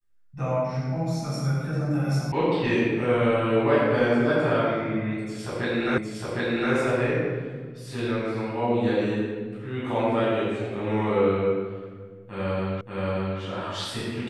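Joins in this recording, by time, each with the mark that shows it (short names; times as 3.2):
2.32 sound cut off
5.98 repeat of the last 0.76 s
12.81 repeat of the last 0.58 s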